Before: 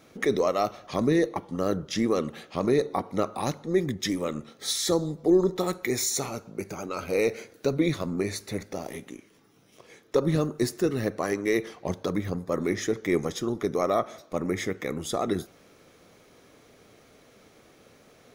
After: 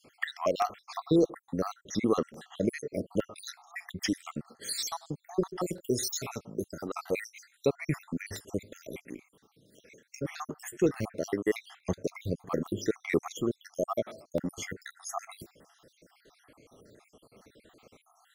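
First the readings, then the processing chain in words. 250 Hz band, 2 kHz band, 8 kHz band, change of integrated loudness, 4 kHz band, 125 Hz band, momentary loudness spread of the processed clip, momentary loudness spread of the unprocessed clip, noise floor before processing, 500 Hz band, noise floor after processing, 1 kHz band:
-5.5 dB, -4.5 dB, -5.5 dB, -5.5 dB, -5.5 dB, -6.0 dB, 13 LU, 10 LU, -57 dBFS, -6.0 dB, -71 dBFS, -5.5 dB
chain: random holes in the spectrogram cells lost 66%; crackling interface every 0.86 s, samples 64, repeat, from 0.62 s

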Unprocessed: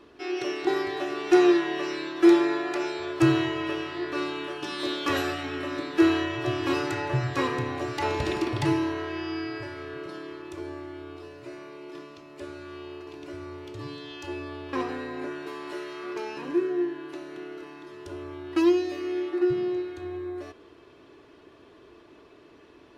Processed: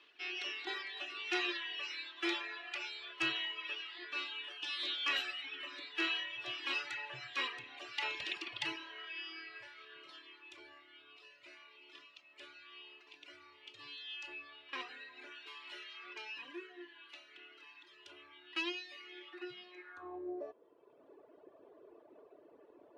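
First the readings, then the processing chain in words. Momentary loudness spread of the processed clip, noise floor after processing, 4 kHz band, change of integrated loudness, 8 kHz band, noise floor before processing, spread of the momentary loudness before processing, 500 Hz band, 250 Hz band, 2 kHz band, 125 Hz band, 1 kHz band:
21 LU, -63 dBFS, -1.5 dB, -12.5 dB, no reading, -53 dBFS, 18 LU, -23.5 dB, -24.5 dB, -5.5 dB, -33.5 dB, -15.0 dB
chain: band-pass sweep 2.9 kHz -> 570 Hz, 19.70–20.31 s; reverb removal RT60 1.6 s; trim +3 dB

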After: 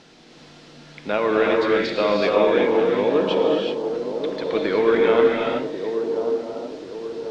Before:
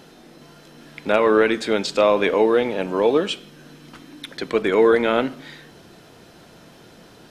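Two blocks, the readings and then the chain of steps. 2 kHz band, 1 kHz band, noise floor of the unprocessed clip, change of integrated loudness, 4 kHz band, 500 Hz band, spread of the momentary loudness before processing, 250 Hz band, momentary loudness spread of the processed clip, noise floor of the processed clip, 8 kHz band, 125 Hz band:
-1.0 dB, -0.5 dB, -48 dBFS, -1.5 dB, -1.0 dB, +1.0 dB, 15 LU, 0.0 dB, 13 LU, -47 dBFS, no reading, +0.5 dB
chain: added noise blue -39 dBFS; low-pass 4.8 kHz 24 dB/octave; feedback echo behind a band-pass 1086 ms, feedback 46%, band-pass 440 Hz, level -6.5 dB; gated-style reverb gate 410 ms rising, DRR -1.5 dB; trim -4.5 dB

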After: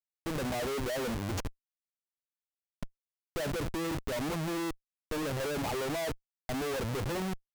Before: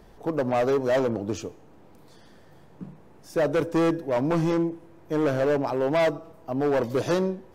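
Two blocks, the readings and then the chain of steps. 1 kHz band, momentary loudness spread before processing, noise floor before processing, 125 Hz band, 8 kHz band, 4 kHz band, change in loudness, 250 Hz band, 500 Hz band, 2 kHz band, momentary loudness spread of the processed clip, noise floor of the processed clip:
-8.5 dB, 15 LU, -51 dBFS, -6.0 dB, +2.5 dB, 0.0 dB, -9.5 dB, -9.5 dB, -12.0 dB, -5.0 dB, 12 LU, under -85 dBFS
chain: expander on every frequency bin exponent 1.5; Schmitt trigger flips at -36.5 dBFS; trim -4.5 dB

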